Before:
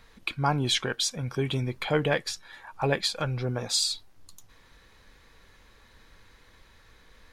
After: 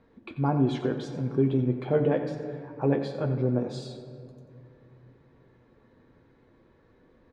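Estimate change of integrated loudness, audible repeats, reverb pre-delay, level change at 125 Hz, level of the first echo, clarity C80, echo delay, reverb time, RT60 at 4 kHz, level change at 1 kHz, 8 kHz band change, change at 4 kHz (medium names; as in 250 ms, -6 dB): 0.0 dB, 1, 8 ms, +2.0 dB, -12.5 dB, 7.5 dB, 89 ms, 2.8 s, 1.5 s, -4.0 dB, under -20 dB, -19.0 dB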